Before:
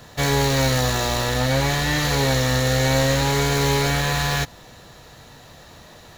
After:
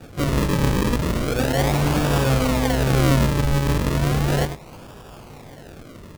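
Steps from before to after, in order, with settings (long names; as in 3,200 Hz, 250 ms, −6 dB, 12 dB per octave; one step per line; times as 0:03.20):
0:02.18–0:03.76: bass and treble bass +4 dB, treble −13 dB
in parallel at −3 dB: downward compressor, threshold −31 dBFS, peak gain reduction 15.5 dB
on the sum: double-tracking delay 20 ms −7 dB
single-tap delay 97 ms −7.5 dB
sample-and-hold swept by an LFO 42×, swing 100% 0.35 Hz
level −2 dB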